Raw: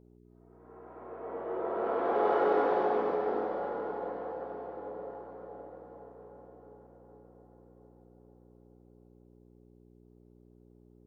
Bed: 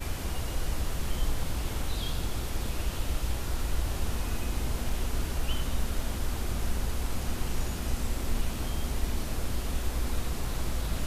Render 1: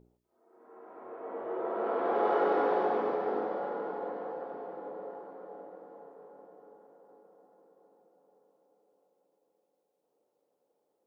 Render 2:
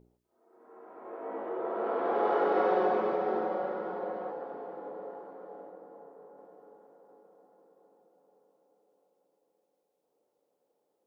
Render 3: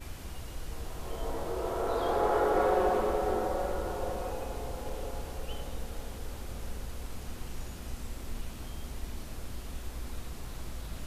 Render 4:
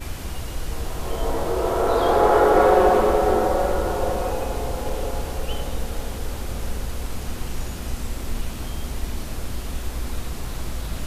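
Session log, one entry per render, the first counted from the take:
hum removal 60 Hz, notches 11
0:01.03–0:01.49: double-tracking delay 18 ms −2 dB; 0:02.55–0:04.31: comb filter 5.4 ms, depth 68%; 0:05.71–0:06.38: parametric band 3,000 Hz −4 dB 1.9 octaves
mix in bed −9 dB
level +11 dB

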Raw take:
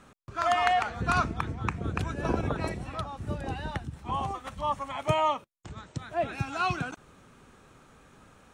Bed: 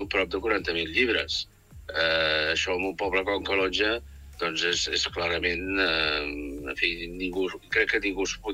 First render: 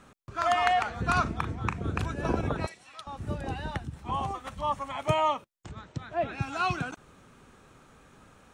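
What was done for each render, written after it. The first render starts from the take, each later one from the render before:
0:01.22–0:02.07: double-tracking delay 39 ms −10 dB
0:02.66–0:03.07: resonant band-pass 5,900 Hz, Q 0.59
0:05.71–0:06.42: high-frequency loss of the air 80 metres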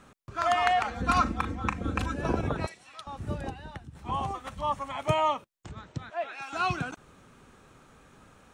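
0:00.84–0:02.17: comb filter 3.8 ms, depth 74%
0:03.50–0:03.95: clip gain −8 dB
0:06.10–0:06.53: high-pass filter 720 Hz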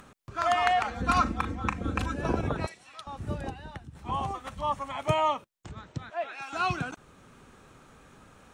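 upward compression, threshold −49 dBFS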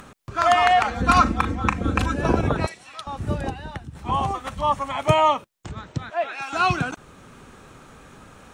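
level +8 dB
brickwall limiter −2 dBFS, peak gain reduction 2.5 dB

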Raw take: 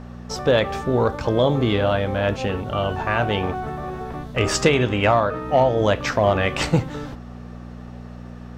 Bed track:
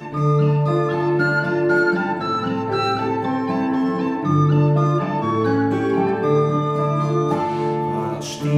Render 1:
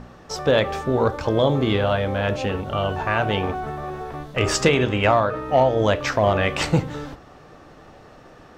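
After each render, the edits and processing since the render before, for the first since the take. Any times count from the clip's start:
hum removal 60 Hz, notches 10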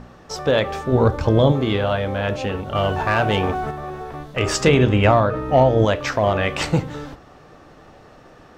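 0:00.92–0:01.52: low-shelf EQ 250 Hz +10.5 dB
0:02.75–0:03.71: leveller curve on the samples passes 1
0:04.67–0:05.85: low-shelf EQ 350 Hz +8.5 dB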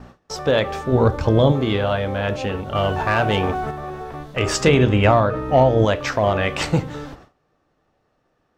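noise gate with hold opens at −32 dBFS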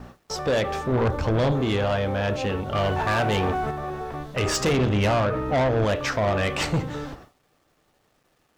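bit reduction 11 bits
soft clipping −18 dBFS, distortion −8 dB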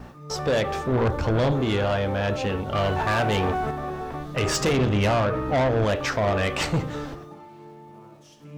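mix in bed track −23.5 dB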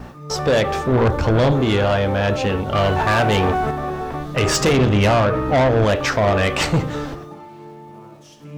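level +6 dB

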